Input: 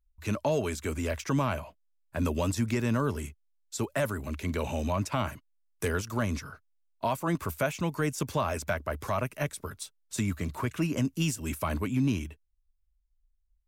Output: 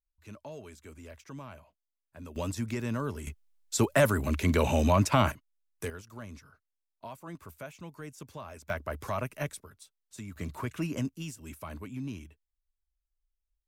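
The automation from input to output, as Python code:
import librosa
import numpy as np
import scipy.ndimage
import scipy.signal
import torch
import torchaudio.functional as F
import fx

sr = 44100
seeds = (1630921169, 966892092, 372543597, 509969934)

y = fx.gain(x, sr, db=fx.steps((0.0, -16.5), (2.36, -5.0), (3.27, 6.0), (5.32, -5.5), (5.9, -14.5), (8.7, -3.0), (9.6, -13.0), (10.36, -4.0), (11.09, -11.0)))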